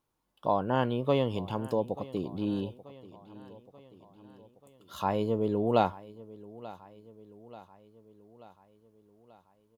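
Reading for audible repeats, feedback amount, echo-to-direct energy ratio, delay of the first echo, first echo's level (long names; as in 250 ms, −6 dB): 4, 57%, −17.5 dB, 885 ms, −19.0 dB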